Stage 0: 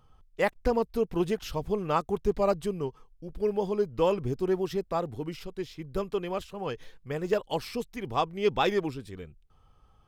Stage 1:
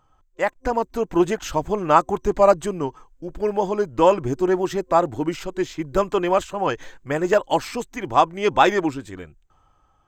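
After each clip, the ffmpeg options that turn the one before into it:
-af "superequalizer=6b=2.24:8b=2:9b=1.78:15b=2.82:16b=0.501,dynaudnorm=f=130:g=13:m=12dB,equalizer=f=1.5k:w=1.1:g=9.5,volume=-4.5dB"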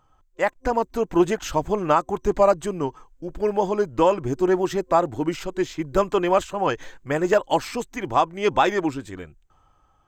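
-af "alimiter=limit=-7dB:level=0:latency=1:release=358"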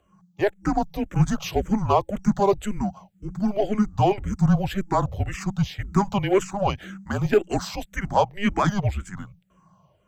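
-filter_complex "[0:a]asplit=2[a][b];[b]asoftclip=type=tanh:threshold=-21.5dB,volume=-5.5dB[c];[a][c]amix=inputs=2:normalize=0,afreqshift=-200,asplit=2[d][e];[e]afreqshift=-1.9[f];[d][f]amix=inputs=2:normalize=1"

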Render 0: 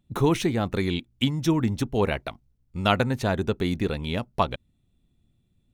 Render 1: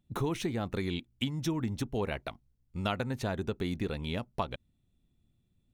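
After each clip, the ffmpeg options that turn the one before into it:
-af "acompressor=threshold=-24dB:ratio=3,volume=-5dB"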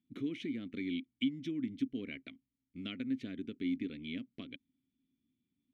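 -filter_complex "[0:a]asplit=3[a][b][c];[a]bandpass=f=270:t=q:w=8,volume=0dB[d];[b]bandpass=f=2.29k:t=q:w=8,volume=-6dB[e];[c]bandpass=f=3.01k:t=q:w=8,volume=-9dB[f];[d][e][f]amix=inputs=3:normalize=0,volume=5dB"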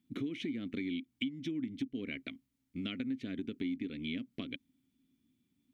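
-af "acompressor=threshold=-42dB:ratio=4,volume=7dB"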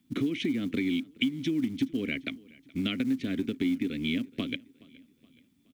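-filter_complex "[0:a]acrossover=split=290|720|1400[a][b][c][d];[a]acrusher=bits=6:mode=log:mix=0:aa=0.000001[e];[e][b][c][d]amix=inputs=4:normalize=0,aecho=1:1:422|844|1266:0.0668|0.0321|0.0154,volume=8.5dB"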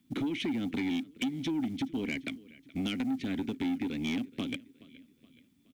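-af "asoftclip=type=tanh:threshold=-26.5dB"

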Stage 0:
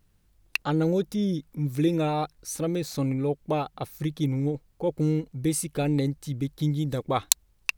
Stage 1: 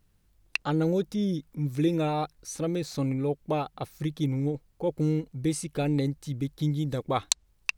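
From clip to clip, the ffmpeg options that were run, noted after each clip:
-filter_complex "[0:a]acrossover=split=8800[a][b];[b]acompressor=threshold=-53dB:ratio=4:attack=1:release=60[c];[a][c]amix=inputs=2:normalize=0,volume=-1.5dB"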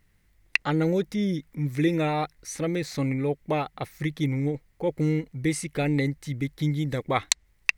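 -af "equalizer=f=2k:t=o:w=0.42:g=14,volume=1.5dB"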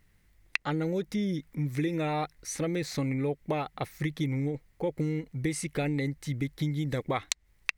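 -af "acompressor=threshold=-26dB:ratio=6"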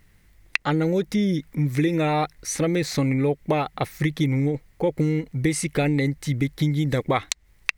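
-af "alimiter=level_in=9dB:limit=-1dB:release=50:level=0:latency=1,volume=-1dB"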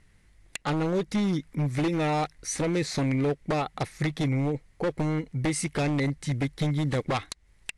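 -af "aeval=exprs='0.141*(abs(mod(val(0)/0.141+3,4)-2)-1)':c=same,volume=-3dB" -ar 24000 -c:a aac -b:a 64k

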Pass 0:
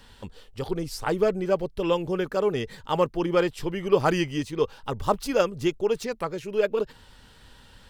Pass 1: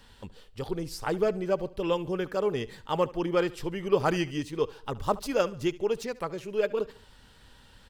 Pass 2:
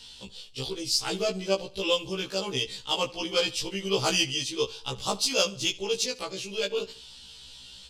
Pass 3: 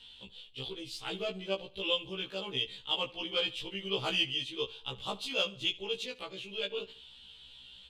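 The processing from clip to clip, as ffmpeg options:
-af "aecho=1:1:72|144|216:0.1|0.042|0.0176,volume=-3.5dB"
-af "adynamicsmooth=sensitivity=1.5:basefreq=5.6k,aexciter=amount=9.1:drive=7.3:freq=2.7k,afftfilt=real='re*1.73*eq(mod(b,3),0)':imag='im*1.73*eq(mod(b,3),0)':win_size=2048:overlap=0.75"
-af "highshelf=f=4.2k:t=q:w=3:g=-8,volume=-8.5dB"

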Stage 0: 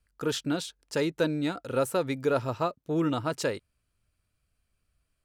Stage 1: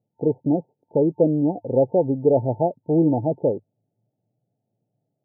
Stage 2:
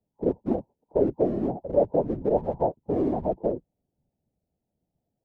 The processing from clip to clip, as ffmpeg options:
-af "afftfilt=real='re*between(b*sr/4096,100,900)':imag='im*between(b*sr/4096,100,900)':win_size=4096:overlap=0.75,volume=9dB"
-filter_complex "[0:a]acrossover=split=210|270[a][b][c];[a]aeval=exprs='0.0335*(abs(mod(val(0)/0.0335+3,4)-2)-1)':c=same[d];[d][b][c]amix=inputs=3:normalize=0,afftfilt=real='hypot(re,im)*cos(2*PI*random(0))':imag='hypot(re,im)*sin(2*PI*random(1))':win_size=512:overlap=0.75,volume=2dB"

